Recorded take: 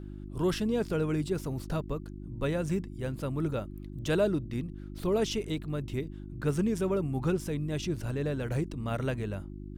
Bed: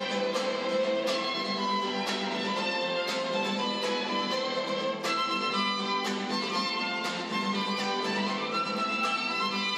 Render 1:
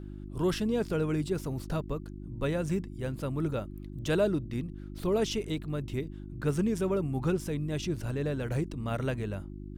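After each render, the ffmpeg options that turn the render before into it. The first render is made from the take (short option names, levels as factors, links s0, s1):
-af anull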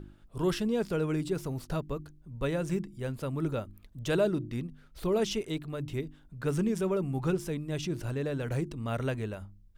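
-af "bandreject=f=50:t=h:w=4,bandreject=f=100:t=h:w=4,bandreject=f=150:t=h:w=4,bandreject=f=200:t=h:w=4,bandreject=f=250:t=h:w=4,bandreject=f=300:t=h:w=4,bandreject=f=350:t=h:w=4"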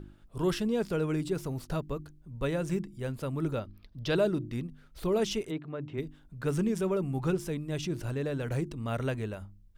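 -filter_complex "[0:a]asettb=1/sr,asplit=3[s0][s1][s2];[s0]atrim=end=3.594[s3];[s1]atrim=start=3.59:end=4.16,asetpts=PTS-STARTPTS,afade=t=in:d=0.004:c=qsin,afade=t=out:st=0.566:d=0.004:c=qsin,highshelf=f=6100:t=q:w=3:g=-7.5[s4];[s2]atrim=start=4.156[s5];[s3][s4]acrossfade=d=0.004:c1=hsin:c2=qsin[s6];[s6][s5]acrossfade=d=0.004:c1=qsin:c2=hsin,asplit=3[s7][s8][s9];[s7]afade=t=out:st=5.5:d=0.02[s10];[s8]highpass=150,lowpass=2200,afade=t=in:st=5.5:d=0.02,afade=t=out:st=5.97:d=0.02[s11];[s9]afade=t=in:st=5.97:d=0.02[s12];[s10][s11][s12]amix=inputs=3:normalize=0"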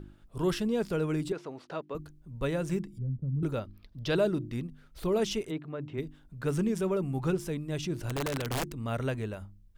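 -filter_complex "[0:a]asettb=1/sr,asplit=3[s0][s1][s2];[s0]atrim=end=1.324[s3];[s1]atrim=start=1.32:end=1.95,asetpts=PTS-STARTPTS,afade=t=in:d=0.004:c=qsin,afade=t=out:st=0.626:d=0.004:c=qsin,highpass=340,lowpass=3600[s4];[s2]atrim=start=1.946[s5];[s3][s4]acrossfade=d=0.004:c1=hsin:c2=qsin[s6];[s6][s5]acrossfade=d=0.004:c1=qsin:c2=hsin,asettb=1/sr,asplit=3[s7][s8][s9];[s7]atrim=end=2.984[s10];[s8]atrim=start=2.98:end=3.43,asetpts=PTS-STARTPTS,afade=t=in:d=0.004:c=qsin,afade=t=out:st=0.446:d=0.004:c=qsin,lowpass=f=160:t=q:w=1.8[s11];[s9]atrim=start=3.426[s12];[s10][s11]acrossfade=d=0.004:c1=hsin:c2=qsin[s13];[s13][s12]acrossfade=d=0.004:c1=qsin:c2=hsin,asettb=1/sr,asplit=3[s14][s15][s16];[s14]atrim=end=8.094[s17];[s15]atrim=start=8.09:end=8.78,asetpts=PTS-STARTPTS,afade=t=in:d=0.004:c=qsin,afade=t=out:st=0.686:d=0.004:c=qsin,aeval=exprs='(mod(18.8*val(0)+1,2)-1)/18.8':c=same[s18];[s16]atrim=start=8.776[s19];[s17][s18]acrossfade=d=0.004:c1=hsin:c2=qsin[s20];[s20][s19]acrossfade=d=0.004:c1=qsin:c2=hsin"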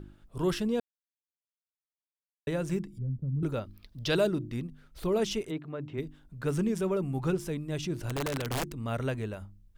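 -filter_complex "[0:a]asettb=1/sr,asplit=3[s0][s1][s2];[s0]atrim=end=3.664[s3];[s1]atrim=start=3.66:end=4.27,asetpts=PTS-STARTPTS,afade=t=in:d=0.004:c=qsin,afade=t=out:st=0.606:d=0.004:c=qsin,highshelf=f=2800:g=7.5[s4];[s2]atrim=start=4.266[s5];[s3][s4]acrossfade=d=0.004:c1=hsin:c2=qsin[s6];[s6][s5]acrossfade=d=0.004:c1=qsin:c2=hsin,asplit=3[s7][s8][s9];[s7]atrim=end=0.8,asetpts=PTS-STARTPTS,afade=t=out:st=0.796:d=0.004:c=hsin[s10];[s8]atrim=start=0.8:end=2.47,asetpts=PTS-STARTPTS,volume=0[s11];[s9]atrim=start=2.47,asetpts=PTS-STARTPTS,afade=t=in:d=0.004:c=hsin[s12];[s10][s11][s12]concat=n=3:v=0:a=1"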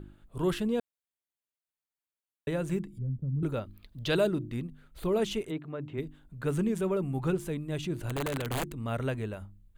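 -af "equalizer=f=5400:t=o:w=0.33:g=-11"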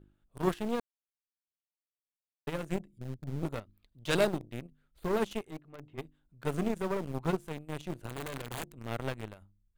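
-filter_complex "[0:a]aeval=exprs='0.15*(cos(1*acos(clip(val(0)/0.15,-1,1)))-cos(1*PI/2))+0.0299*(cos(2*acos(clip(val(0)/0.15,-1,1)))-cos(2*PI/2))+0.0299*(cos(3*acos(clip(val(0)/0.15,-1,1)))-cos(3*PI/2))+0.0188*(cos(4*acos(clip(val(0)/0.15,-1,1)))-cos(4*PI/2))+0.00473*(cos(7*acos(clip(val(0)/0.15,-1,1)))-cos(7*PI/2))':c=same,asplit=2[s0][s1];[s1]acrusher=bits=5:mix=0:aa=0.000001,volume=0.251[s2];[s0][s2]amix=inputs=2:normalize=0"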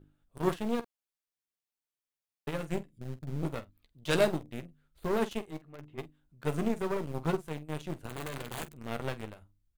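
-af "aecho=1:1:13|47:0.316|0.168"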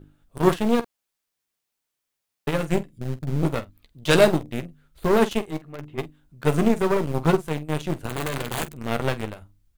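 -af "volume=3.55,alimiter=limit=0.794:level=0:latency=1"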